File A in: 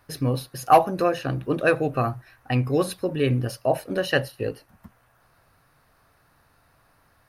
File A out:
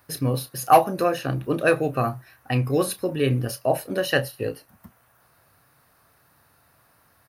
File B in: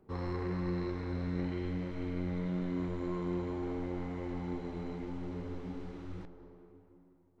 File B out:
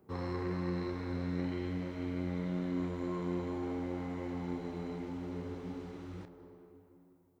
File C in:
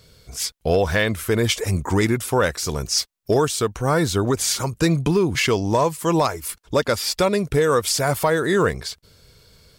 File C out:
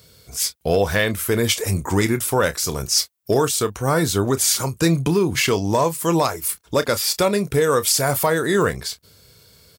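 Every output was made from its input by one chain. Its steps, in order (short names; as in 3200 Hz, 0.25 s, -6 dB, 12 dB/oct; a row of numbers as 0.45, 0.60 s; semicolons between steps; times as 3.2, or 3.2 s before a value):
HPF 70 Hz; high shelf 10000 Hz +12 dB; doubler 30 ms -13 dB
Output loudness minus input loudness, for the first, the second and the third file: +0.5, -0.5, +1.0 LU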